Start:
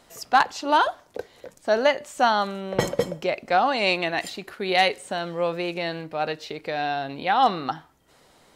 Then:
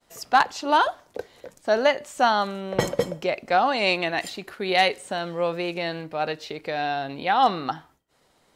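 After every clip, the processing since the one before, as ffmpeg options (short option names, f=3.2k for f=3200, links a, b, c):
-af "agate=range=-33dB:threshold=-50dB:ratio=3:detection=peak"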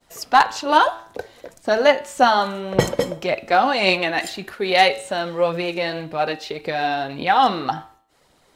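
-af "aphaser=in_gain=1:out_gain=1:delay=4.1:decay=0.39:speed=1.8:type=triangular,bandreject=f=111.1:t=h:w=4,bandreject=f=222.2:t=h:w=4,bandreject=f=333.3:t=h:w=4,bandreject=f=444.4:t=h:w=4,bandreject=f=555.5:t=h:w=4,bandreject=f=666.6:t=h:w=4,bandreject=f=777.7:t=h:w=4,bandreject=f=888.8:t=h:w=4,bandreject=f=999.9:t=h:w=4,bandreject=f=1.111k:t=h:w=4,bandreject=f=1.2221k:t=h:w=4,bandreject=f=1.3332k:t=h:w=4,bandreject=f=1.4443k:t=h:w=4,bandreject=f=1.5554k:t=h:w=4,bandreject=f=1.6665k:t=h:w=4,bandreject=f=1.7776k:t=h:w=4,bandreject=f=1.8887k:t=h:w=4,bandreject=f=1.9998k:t=h:w=4,bandreject=f=2.1109k:t=h:w=4,bandreject=f=2.222k:t=h:w=4,bandreject=f=2.3331k:t=h:w=4,bandreject=f=2.4442k:t=h:w=4,bandreject=f=2.5553k:t=h:w=4,bandreject=f=2.6664k:t=h:w=4,bandreject=f=2.7775k:t=h:w=4,bandreject=f=2.8886k:t=h:w=4,bandreject=f=2.9997k:t=h:w=4,bandreject=f=3.1108k:t=h:w=4,bandreject=f=3.2219k:t=h:w=4,bandreject=f=3.333k:t=h:w=4,bandreject=f=3.4441k:t=h:w=4,bandreject=f=3.5552k:t=h:w=4,bandreject=f=3.6663k:t=h:w=4,bandreject=f=3.7774k:t=h:w=4,bandreject=f=3.8885k:t=h:w=4,bandreject=f=3.9996k:t=h:w=4,bandreject=f=4.1107k:t=h:w=4,bandreject=f=4.2218k:t=h:w=4,volume=4dB"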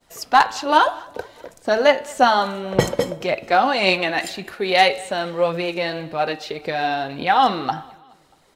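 -af "aecho=1:1:212|424|636:0.0631|0.0328|0.0171"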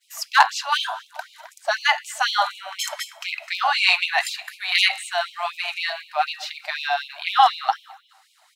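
-af "afftfilt=real='re*gte(b*sr/1024,580*pow(2300/580,0.5+0.5*sin(2*PI*4*pts/sr)))':imag='im*gte(b*sr/1024,580*pow(2300/580,0.5+0.5*sin(2*PI*4*pts/sr)))':win_size=1024:overlap=0.75,volume=2.5dB"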